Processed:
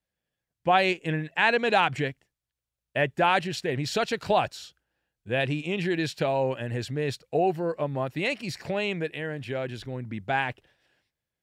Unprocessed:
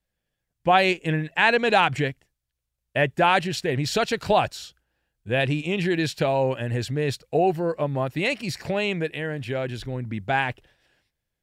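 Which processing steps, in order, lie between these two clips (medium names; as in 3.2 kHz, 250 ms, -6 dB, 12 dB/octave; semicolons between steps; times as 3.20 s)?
high-pass 100 Hz 6 dB/octave; treble shelf 7.7 kHz -4 dB; trim -3 dB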